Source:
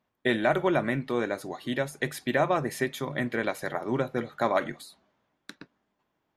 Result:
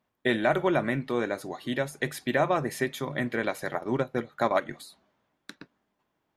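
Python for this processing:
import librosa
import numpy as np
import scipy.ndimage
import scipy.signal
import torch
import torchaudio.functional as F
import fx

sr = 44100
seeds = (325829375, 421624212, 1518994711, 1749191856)

y = fx.transient(x, sr, attack_db=1, sustain_db=-8, at=(3.7, 4.71))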